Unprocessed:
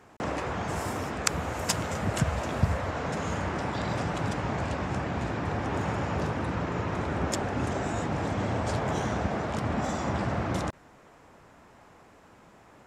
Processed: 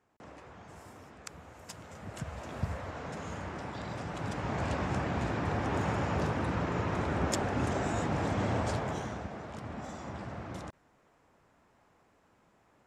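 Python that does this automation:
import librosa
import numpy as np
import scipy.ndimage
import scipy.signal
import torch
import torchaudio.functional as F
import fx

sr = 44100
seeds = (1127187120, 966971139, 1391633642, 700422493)

y = fx.gain(x, sr, db=fx.line((1.68, -19.0), (2.65, -9.0), (4.03, -9.0), (4.7, -1.5), (8.6, -1.5), (9.31, -12.0)))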